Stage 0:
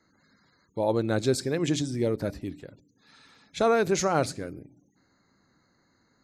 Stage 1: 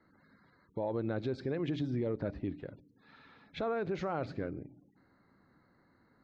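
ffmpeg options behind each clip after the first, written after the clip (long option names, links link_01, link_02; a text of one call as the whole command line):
ffmpeg -i in.wav -filter_complex "[0:a]lowpass=frequency=3800:width=0.5412,lowpass=frequency=3800:width=1.3066,acrossover=split=2000[link_01][link_02];[link_01]acontrast=76[link_03];[link_03][link_02]amix=inputs=2:normalize=0,alimiter=limit=-19.5dB:level=0:latency=1:release=203,volume=-6.5dB" out.wav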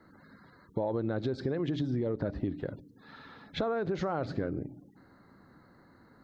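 ffmpeg -i in.wav -af "equalizer=frequency=2400:width_type=o:width=0.4:gain=-8,acompressor=threshold=-37dB:ratio=6,volume=9dB" out.wav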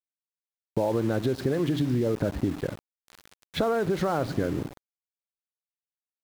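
ffmpeg -i in.wav -af "aeval=exprs='val(0)*gte(abs(val(0)),0.0075)':channel_layout=same,volume=6dB" out.wav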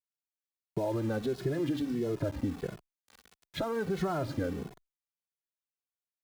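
ffmpeg -i in.wav -filter_complex "[0:a]asplit=2[link_01][link_02];[link_02]adelay=2.3,afreqshift=-1.5[link_03];[link_01][link_03]amix=inputs=2:normalize=1,volume=-3dB" out.wav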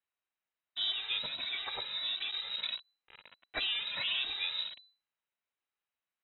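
ffmpeg -i in.wav -af "equalizer=frequency=490:width_type=o:width=0.8:gain=-13.5,afftfilt=real='re*lt(hypot(re,im),0.0794)':imag='im*lt(hypot(re,im),0.0794)':win_size=1024:overlap=0.75,lowpass=frequency=3400:width_type=q:width=0.5098,lowpass=frequency=3400:width_type=q:width=0.6013,lowpass=frequency=3400:width_type=q:width=0.9,lowpass=frequency=3400:width_type=q:width=2.563,afreqshift=-4000,volume=8dB" out.wav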